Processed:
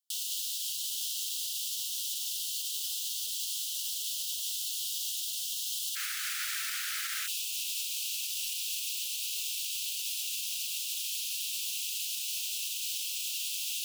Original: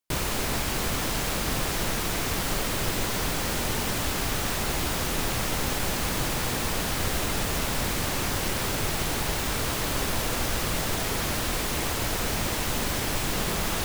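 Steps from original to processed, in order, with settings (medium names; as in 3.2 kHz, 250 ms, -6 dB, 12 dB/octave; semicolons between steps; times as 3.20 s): steep high-pass 2.9 kHz 96 dB/octave, from 5.95 s 1.3 kHz, from 7.26 s 2.6 kHz; peak limiter -25 dBFS, peak gain reduction 6.5 dB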